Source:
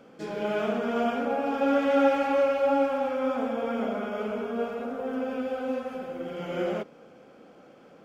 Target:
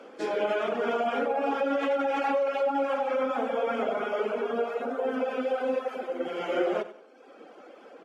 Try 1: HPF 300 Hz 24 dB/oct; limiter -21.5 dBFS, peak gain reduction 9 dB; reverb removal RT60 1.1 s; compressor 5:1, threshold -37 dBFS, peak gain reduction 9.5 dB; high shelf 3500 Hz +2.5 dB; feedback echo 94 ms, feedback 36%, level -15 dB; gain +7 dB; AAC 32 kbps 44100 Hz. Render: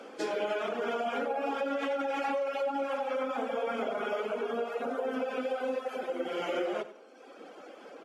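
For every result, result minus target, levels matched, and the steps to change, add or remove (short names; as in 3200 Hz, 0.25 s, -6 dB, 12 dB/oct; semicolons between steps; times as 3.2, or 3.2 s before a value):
8000 Hz band +6.5 dB; compressor: peak gain reduction +5.5 dB
change: high shelf 3500 Hz -4.5 dB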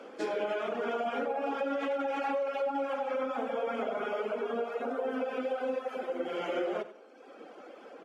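compressor: peak gain reduction +5.5 dB
change: compressor 5:1, threshold -30 dBFS, peak gain reduction 4 dB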